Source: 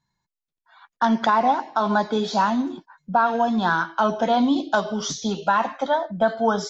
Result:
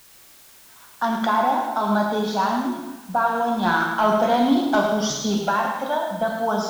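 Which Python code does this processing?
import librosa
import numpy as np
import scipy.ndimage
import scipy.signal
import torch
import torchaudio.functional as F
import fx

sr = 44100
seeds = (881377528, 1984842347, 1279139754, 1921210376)

p1 = fx.leveller(x, sr, passes=1, at=(3.63, 5.49))
p2 = fx.quant_dither(p1, sr, seeds[0], bits=6, dither='triangular')
p3 = p1 + (p2 * 10.0 ** (-9.5 / 20.0))
p4 = p3 + 10.0 ** (-8.0 / 20.0) * np.pad(p3, (int(106 * sr / 1000.0), 0))[:len(p3)]
p5 = fx.rev_plate(p4, sr, seeds[1], rt60_s=1.2, hf_ratio=0.9, predelay_ms=0, drr_db=2.0)
y = p5 * 10.0 ** (-6.0 / 20.0)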